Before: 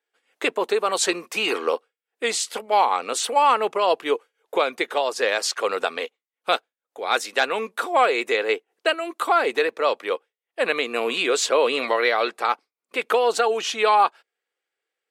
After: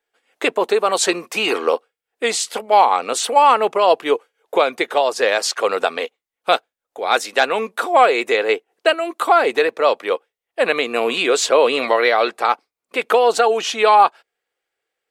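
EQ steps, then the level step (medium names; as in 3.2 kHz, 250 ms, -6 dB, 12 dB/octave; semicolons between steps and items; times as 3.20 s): bass shelf 120 Hz +9.5 dB; peaking EQ 700 Hz +3.5 dB 0.73 oct; +3.5 dB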